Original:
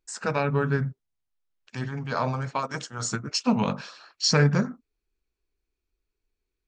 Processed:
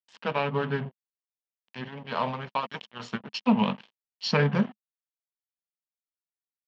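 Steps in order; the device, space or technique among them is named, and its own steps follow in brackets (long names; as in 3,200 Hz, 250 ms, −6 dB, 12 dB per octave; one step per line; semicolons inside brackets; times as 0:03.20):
blown loudspeaker (dead-zone distortion −35.5 dBFS; loudspeaker in its box 170–4,000 Hz, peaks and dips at 210 Hz +7 dB, 310 Hz −6 dB, 970 Hz +4 dB, 1,400 Hz −5 dB, 3,000 Hz +9 dB)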